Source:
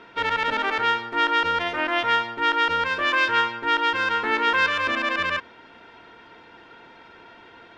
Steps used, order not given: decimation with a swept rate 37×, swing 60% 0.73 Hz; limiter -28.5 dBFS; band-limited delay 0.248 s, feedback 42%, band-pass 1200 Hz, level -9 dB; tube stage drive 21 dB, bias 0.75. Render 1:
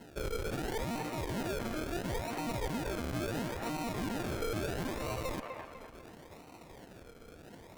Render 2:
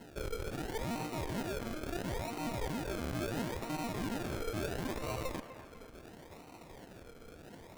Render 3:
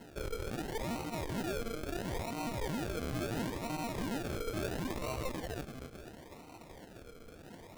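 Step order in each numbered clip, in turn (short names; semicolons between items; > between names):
decimation with a swept rate > tube stage > band-limited delay > limiter; tube stage > limiter > decimation with a swept rate > band-limited delay; band-limited delay > tube stage > limiter > decimation with a swept rate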